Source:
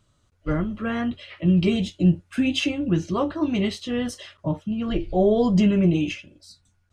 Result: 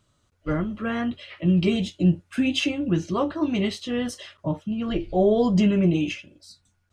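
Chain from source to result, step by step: bass shelf 97 Hz -6 dB

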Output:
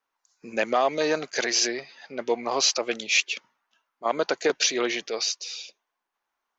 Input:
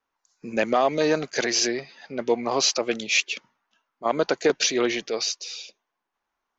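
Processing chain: bass shelf 260 Hz -11.5 dB

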